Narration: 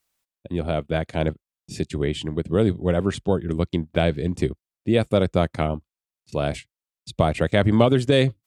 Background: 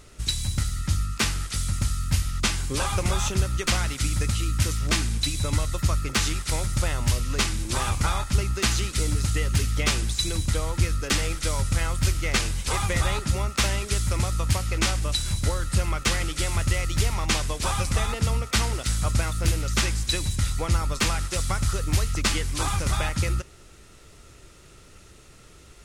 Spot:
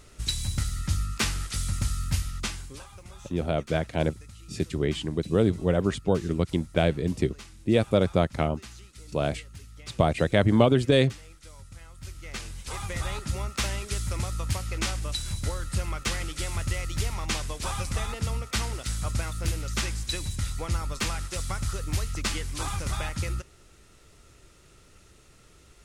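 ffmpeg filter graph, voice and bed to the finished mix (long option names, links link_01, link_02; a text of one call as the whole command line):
ffmpeg -i stem1.wav -i stem2.wav -filter_complex "[0:a]adelay=2800,volume=-2.5dB[link_01];[1:a]volume=14dB,afade=type=out:start_time=2.04:duration=0.82:silence=0.105925,afade=type=in:start_time=11.93:duration=1.48:silence=0.149624[link_02];[link_01][link_02]amix=inputs=2:normalize=0" out.wav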